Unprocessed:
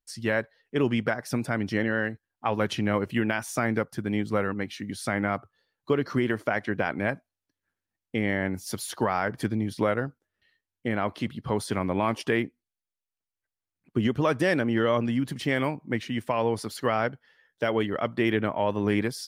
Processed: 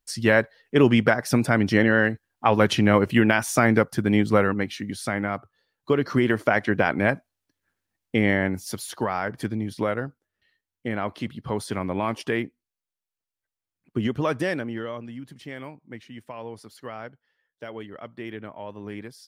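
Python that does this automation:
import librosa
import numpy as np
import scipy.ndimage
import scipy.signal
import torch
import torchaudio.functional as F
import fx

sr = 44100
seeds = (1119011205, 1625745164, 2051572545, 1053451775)

y = fx.gain(x, sr, db=fx.line((4.32, 7.5), (5.3, -0.5), (6.49, 6.0), (8.29, 6.0), (8.84, -0.5), (14.38, -0.5), (15.01, -11.5)))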